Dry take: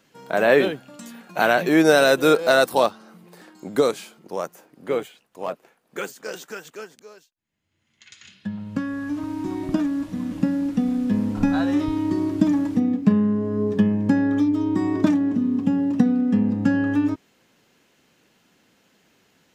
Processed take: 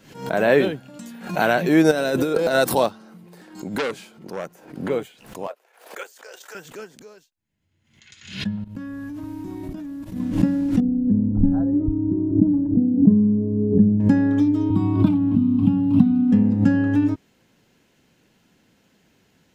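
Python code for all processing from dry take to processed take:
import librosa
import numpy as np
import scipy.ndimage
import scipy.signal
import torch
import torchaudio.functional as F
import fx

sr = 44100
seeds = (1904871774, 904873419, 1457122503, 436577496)

y = fx.chain(x, sr, fx.peak_eq(hz=290.0, db=3.5, octaves=1.5),
    fx.over_compress(threshold_db=-21.0, ratio=-1.0), at=(1.91, 2.55))
y = fx.chain(y, sr, fx.high_shelf(hz=5500.0, db=-5.5),
    fx.transformer_sat(knee_hz=2300.0), at=(3.78, 4.9))
y = fx.chain(y, sr, fx.highpass(hz=500.0, slope=24),
    fx.level_steps(step_db=10), at=(5.47, 6.55))
y = fx.chain(y, sr, fx.peak_eq(hz=13000.0, db=11.0, octaves=0.6),
    fx.level_steps(step_db=17), at=(8.64, 10.2))
y = fx.chain(y, sr, fx.envelope_sharpen(power=1.5),
    fx.bessel_lowpass(hz=540.0, order=2), at=(10.8, 14.0))
y = fx.chain(y, sr, fx.low_shelf(hz=220.0, db=7.0),
    fx.fixed_phaser(hz=1800.0, stages=6),
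    fx.band_squash(depth_pct=40), at=(14.7, 16.32))
y = fx.low_shelf(y, sr, hz=200.0, db=10.5)
y = fx.notch(y, sr, hz=1200.0, q=14.0)
y = fx.pre_swell(y, sr, db_per_s=100.0)
y = y * 10.0 ** (-2.0 / 20.0)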